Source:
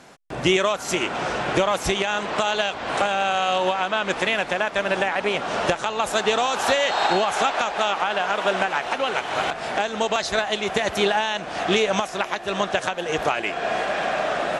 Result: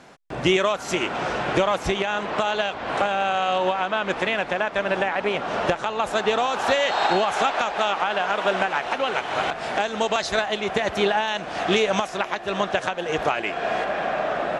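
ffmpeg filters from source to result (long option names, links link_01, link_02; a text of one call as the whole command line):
ffmpeg -i in.wav -af "asetnsamples=nb_out_samples=441:pad=0,asendcmd='1.75 lowpass f 2800;6.71 lowpass f 5000;9.6 lowpass f 8400;10.46 lowpass f 3400;11.28 lowpass f 6900;12.17 lowpass f 4100;13.84 lowpass f 1900',lowpass=frequency=4800:poles=1" out.wav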